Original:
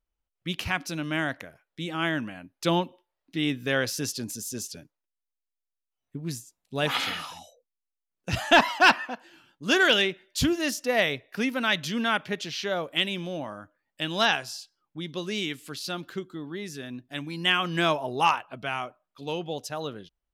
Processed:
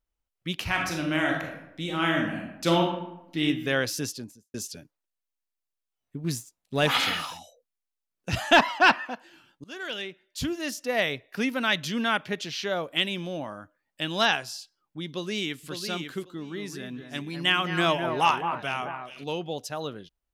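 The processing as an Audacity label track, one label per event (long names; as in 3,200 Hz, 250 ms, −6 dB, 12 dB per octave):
0.660000	3.430000	thrown reverb, RT60 0.86 s, DRR 0 dB
3.980000	4.540000	fade out and dull
6.240000	7.370000	leveller curve on the samples passes 1
8.600000	9.060000	high-shelf EQ 6,000 Hz −10.5 dB
9.640000	11.370000	fade in linear, from −23.5 dB
15.080000	15.690000	delay throw 550 ms, feedback 15%, level −6.5 dB
16.290000	19.240000	delay that swaps between a low-pass and a high-pass 214 ms, split 2,100 Hz, feedback 56%, level −7 dB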